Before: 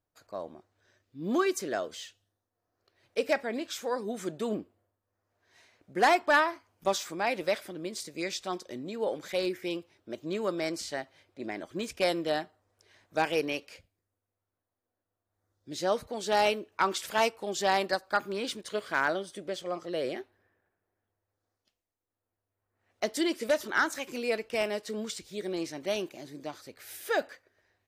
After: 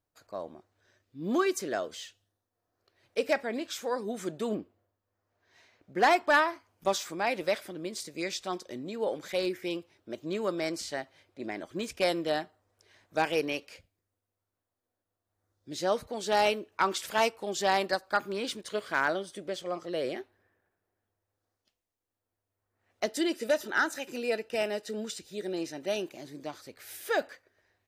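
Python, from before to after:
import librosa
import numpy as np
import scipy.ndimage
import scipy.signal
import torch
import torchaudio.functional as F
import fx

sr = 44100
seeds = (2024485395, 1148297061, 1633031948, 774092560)

y = fx.peak_eq(x, sr, hz=9800.0, db=-8.5, octaves=0.77, at=(4.55, 6.11))
y = fx.notch_comb(y, sr, f0_hz=1100.0, at=(23.06, 26.08))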